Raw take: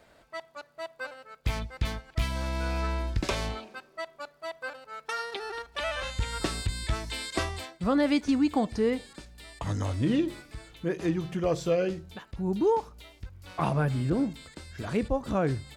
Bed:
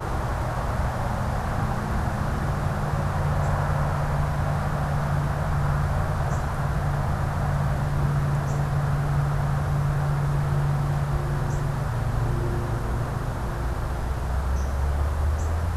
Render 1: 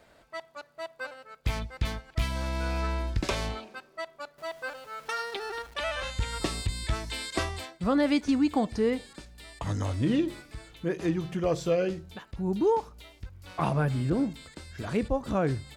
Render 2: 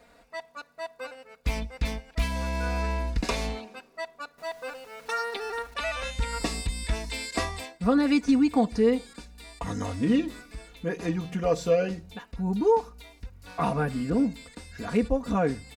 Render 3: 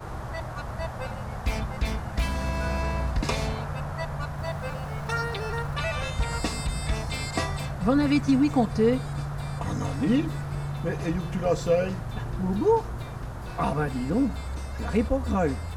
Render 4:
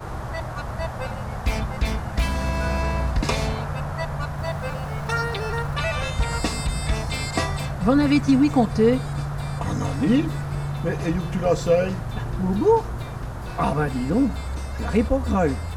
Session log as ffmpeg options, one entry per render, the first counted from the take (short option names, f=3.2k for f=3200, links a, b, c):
-filter_complex "[0:a]asettb=1/sr,asplit=3[a][b][c];[a]atrim=end=4.384[d];[b]atrim=start=4.38:end=5.74,asetpts=PTS-STARTPTS,afade=t=in:d=0.004:c=qsin,afade=t=out:st=1.356:d=0.004:c=qsin,aeval=exprs='val(0)+0.5*0.00398*sgn(val(0))':c=same[e];[c]atrim=start=5.736[f];[d][e]acrossfade=d=0.004:c1=hsin:c2=qsin[g];[g][f]acrossfade=d=0.004:c1=qsin:c2=hsin,asettb=1/sr,asplit=3[h][i][j];[h]atrim=end=6.354[k];[i]atrim=start=6.35:end=6.85,asetpts=PTS-STARTPTS,afade=t=in:d=0.004:c=qsin,afade=t=out:st=0.496:d=0.004:c=qsin,bandreject=f=1.5k:w=5.9[l];[j]atrim=start=6.846[m];[k][l]acrossfade=d=0.004:c1=hsin:c2=qsin[n];[n][m]acrossfade=d=0.004:c1=qsin:c2=hsin"
-af "bandreject=f=3.2k:w=10,aecho=1:1:4.2:0.75"
-filter_complex "[1:a]volume=-8.5dB[a];[0:a][a]amix=inputs=2:normalize=0"
-af "volume=4dB"